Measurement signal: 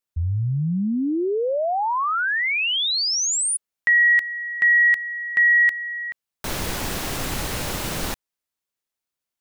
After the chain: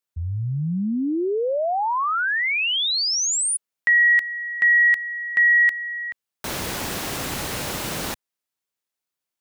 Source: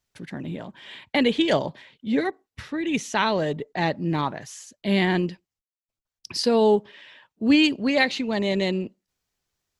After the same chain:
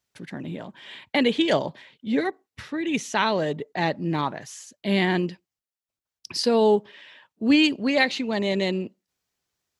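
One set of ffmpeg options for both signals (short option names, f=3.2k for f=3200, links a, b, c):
-af "highpass=f=110:p=1"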